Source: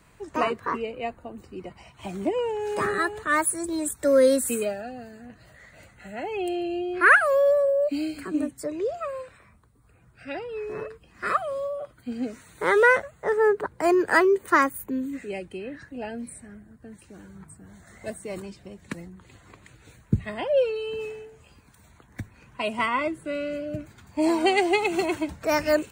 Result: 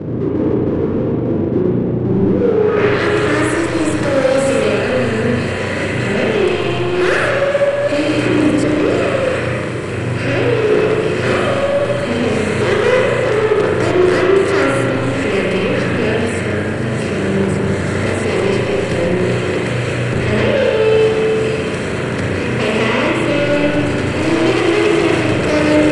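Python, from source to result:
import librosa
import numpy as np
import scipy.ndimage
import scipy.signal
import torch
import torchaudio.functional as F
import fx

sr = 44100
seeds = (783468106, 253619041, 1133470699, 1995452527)

y = fx.bin_compress(x, sr, power=0.4)
y = scipy.signal.sosfilt(scipy.signal.butter(4, 85.0, 'highpass', fs=sr, output='sos'), y)
y = fx.band_shelf(y, sr, hz=1100.0, db=-9.5, octaves=1.7)
y = fx.leveller(y, sr, passes=3)
y = fx.filter_sweep_lowpass(y, sr, from_hz=310.0, to_hz=8100.0, start_s=2.34, end_s=3.12, q=1.5)
y = fx.power_curve(y, sr, exponent=0.7)
y = fx.air_absorb(y, sr, metres=75.0)
y = fx.rev_spring(y, sr, rt60_s=1.8, pass_ms=(33, 41), chirp_ms=75, drr_db=-3.5)
y = F.gain(torch.from_numpy(y), -9.5).numpy()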